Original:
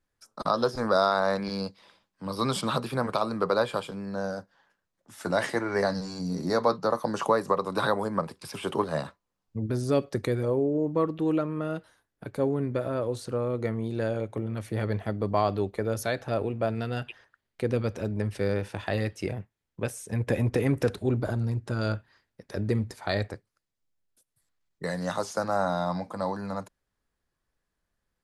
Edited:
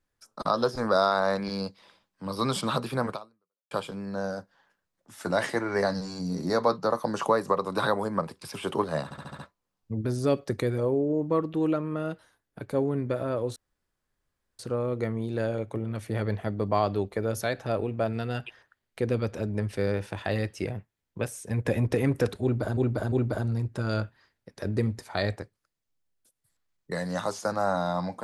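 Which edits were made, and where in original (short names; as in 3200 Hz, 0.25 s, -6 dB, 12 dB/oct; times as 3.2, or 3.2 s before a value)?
3.11–3.71 fade out exponential
9.04 stutter 0.07 s, 6 plays
13.21 insert room tone 1.03 s
21.04–21.39 loop, 3 plays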